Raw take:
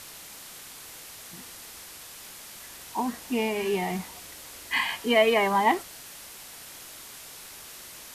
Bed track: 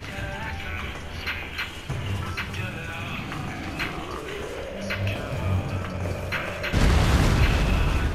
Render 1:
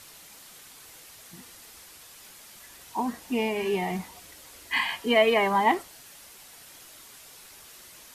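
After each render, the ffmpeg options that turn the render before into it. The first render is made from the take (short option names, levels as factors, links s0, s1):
-af "afftdn=nr=6:nf=-45"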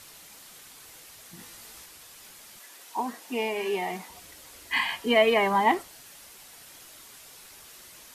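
-filter_complex "[0:a]asettb=1/sr,asplit=3[s0][s1][s2];[s0]atrim=end=1.374[s3];[s1]atrim=start=1.37:end=1.86,asetpts=PTS-STARTPTS,afade=t=in:d=0.004:c=qsin,afade=t=out:st=0.486:d=0.004:c=qsin,asplit=2[s4][s5];[s5]adelay=18,volume=0.75[s6];[s4][s6]amix=inputs=2:normalize=0,atrim=end_sample=21609[s7];[s2]atrim=start=1.856[s8];[s3][s7]acrossfade=d=0.004:c1=hsin:c2=qsin[s9];[s9][s8]acrossfade=d=0.004:c1=qsin:c2=hsin,asettb=1/sr,asplit=3[s10][s11][s12];[s10]atrim=end=2.594[s13];[s11]atrim=start=2.59:end=4.1,asetpts=PTS-STARTPTS,afade=t=in:d=0.004:c=qsin,afade=t=out:st=1.506:d=0.004:c=qsin,highpass=320[s14];[s12]atrim=start=4.096[s15];[s13][s14]acrossfade=d=0.004:c1=hsin:c2=qsin[s16];[s16][s15]acrossfade=d=0.004:c1=qsin:c2=hsin"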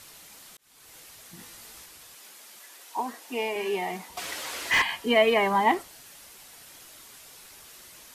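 -filter_complex "[0:a]asettb=1/sr,asplit=3[s0][s1][s2];[s0]atrim=end=2.154[s3];[s1]atrim=start=2.15:end=3.56,asetpts=PTS-STARTPTS,afade=t=in:d=0.004:c=qsin,afade=t=out:st=1.406:d=0.004:c=qsin,highpass=260[s4];[s2]atrim=start=3.556[s5];[s3][s4]acrossfade=d=0.004:c1=hsin:c2=qsin[s6];[s6][s5]acrossfade=d=0.004:c1=qsin:c2=hsin,asettb=1/sr,asplit=3[s7][s8][s9];[s7]atrim=end=4.174[s10];[s8]atrim=start=4.17:end=4.82,asetpts=PTS-STARTPTS,afade=t=in:d=0.004:c=qsin,afade=t=out:st=0.646:d=0.004:c=qsin,asplit=2[s11][s12];[s12]highpass=f=720:p=1,volume=17.8,asoftclip=type=tanh:threshold=0.2[s13];[s11][s13]amix=inputs=2:normalize=0,lowpass=f=3100:p=1,volume=0.501[s14];[s9]atrim=start=4.816[s15];[s10][s14]acrossfade=d=0.004:c1=hsin:c2=qsin[s16];[s16][s15]acrossfade=d=0.004:c1=qsin:c2=hsin,asplit=2[s17][s18];[s17]atrim=end=0.57,asetpts=PTS-STARTPTS,afade=t=out:st=0.566:d=0.004:c=hsin[s19];[s18]atrim=start=0.57,asetpts=PTS-STARTPTS,afade=t=in:d=0.41[s20];[s19][s20]concat=n=2:v=0:a=1"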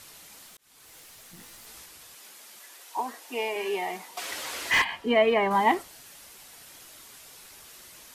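-filter_complex "[0:a]asettb=1/sr,asplit=3[s0][s1][s2];[s0]atrim=end=0.464[s3];[s1]atrim=start=0.46:end=1.67,asetpts=PTS-STARTPTS,afade=t=in:d=0.004:c=qsin,afade=t=out:st=1.206:d=0.004:c=qsin,aeval=exprs='clip(val(0),-1,0.00376)':c=same[s4];[s2]atrim=start=1.666[s5];[s3][s4]acrossfade=d=0.004:c1=hsin:c2=qsin[s6];[s6][s5]acrossfade=d=0.004:c1=qsin:c2=hsin,asettb=1/sr,asplit=3[s7][s8][s9];[s7]atrim=end=2.744[s10];[s8]atrim=start=2.74:end=4.31,asetpts=PTS-STARTPTS,afade=t=in:d=0.004:c=qsin,afade=t=out:st=1.566:d=0.004:c=qsin,highpass=290[s11];[s9]atrim=start=4.306[s12];[s10][s11]acrossfade=d=0.004:c1=hsin:c2=qsin[s13];[s13][s12]acrossfade=d=0.004:c1=qsin:c2=hsin,asettb=1/sr,asplit=3[s14][s15][s16];[s14]atrim=end=4.844[s17];[s15]atrim=start=4.84:end=5.51,asetpts=PTS-STARTPTS,afade=t=in:d=0.004:c=qsin,afade=t=out:st=0.666:d=0.004:c=qsin,lowpass=f=2200:p=1[s18];[s16]atrim=start=5.506[s19];[s17][s18]acrossfade=d=0.004:c1=hsin:c2=qsin[s20];[s20][s19]acrossfade=d=0.004:c1=qsin:c2=hsin"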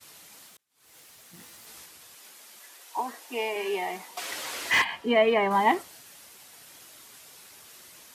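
-af "highpass=86,agate=range=0.0224:threshold=0.00447:ratio=3:detection=peak"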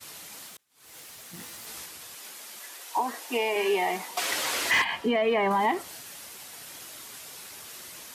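-af "acontrast=66,alimiter=limit=0.141:level=0:latency=1:release=183"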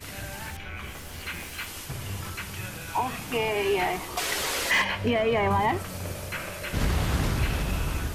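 -filter_complex "[1:a]volume=0.501[s0];[0:a][s0]amix=inputs=2:normalize=0"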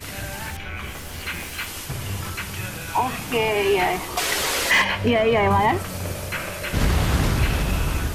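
-af "volume=1.88"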